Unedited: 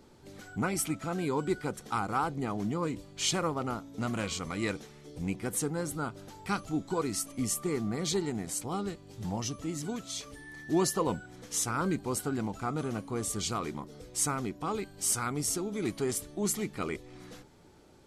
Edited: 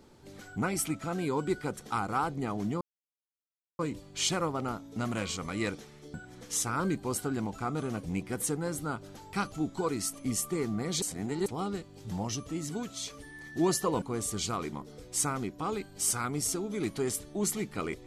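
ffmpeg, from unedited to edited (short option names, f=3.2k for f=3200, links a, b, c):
-filter_complex "[0:a]asplit=7[a][b][c][d][e][f][g];[a]atrim=end=2.81,asetpts=PTS-STARTPTS,afade=t=out:st=2.806:d=0.004:c=hsin,apad=pad_dur=0.98[h];[b]atrim=start=2.81:end=5.162,asetpts=PTS-STARTPTS,afade=t=in:d=0.004:c=hsin[i];[c]atrim=start=11.148:end=13.042[j];[d]atrim=start=5.158:end=8.152[k];[e]atrim=start=8.148:end=8.592,asetpts=PTS-STARTPTS,areverse[l];[f]atrim=start=8.588:end=11.152[m];[g]atrim=start=13.038[n];[h][i]concat=n=2:v=0:a=1[o];[o][j]acrossfade=d=0.004:c1=hsin:c2=hsin[p];[p][k]acrossfade=d=0.004:c1=hsin:c2=hsin[q];[q][l]acrossfade=d=0.004:c1=hsin:c2=hsin[r];[r][m]acrossfade=d=0.004:c1=hsin:c2=hsin[s];[s][n]acrossfade=d=0.004:c1=hsin:c2=hsin"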